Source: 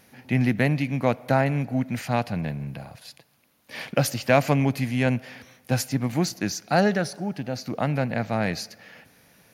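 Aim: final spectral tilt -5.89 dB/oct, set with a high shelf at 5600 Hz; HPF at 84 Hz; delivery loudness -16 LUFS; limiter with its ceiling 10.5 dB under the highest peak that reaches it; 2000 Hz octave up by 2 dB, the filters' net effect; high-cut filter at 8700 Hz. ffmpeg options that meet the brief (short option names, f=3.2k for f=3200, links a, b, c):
-af "highpass=84,lowpass=8.7k,equalizer=f=2k:t=o:g=3.5,highshelf=f=5.6k:g=-8,volume=11.5dB,alimiter=limit=-2dB:level=0:latency=1"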